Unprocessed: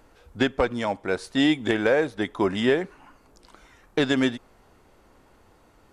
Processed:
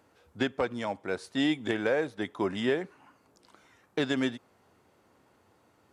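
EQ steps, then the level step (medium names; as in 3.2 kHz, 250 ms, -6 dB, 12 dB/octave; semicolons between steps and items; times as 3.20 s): high-pass 84 Hz 24 dB/octave; -6.5 dB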